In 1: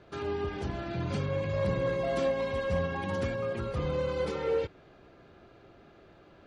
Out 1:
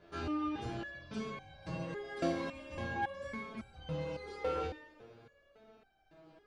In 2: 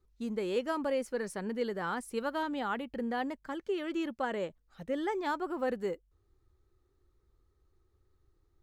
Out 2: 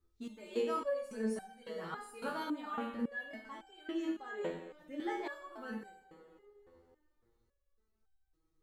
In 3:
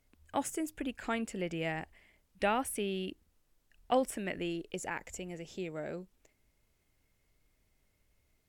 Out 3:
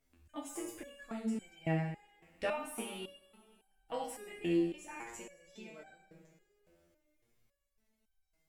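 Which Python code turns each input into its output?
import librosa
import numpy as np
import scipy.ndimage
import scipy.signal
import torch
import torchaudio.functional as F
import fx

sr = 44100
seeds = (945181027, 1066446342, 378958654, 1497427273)

y = fx.rev_double_slope(x, sr, seeds[0], early_s=0.75, late_s=3.0, knee_db=-18, drr_db=0.5)
y = fx.resonator_held(y, sr, hz=3.6, low_hz=85.0, high_hz=780.0)
y = y * 10.0 ** (4.5 / 20.0)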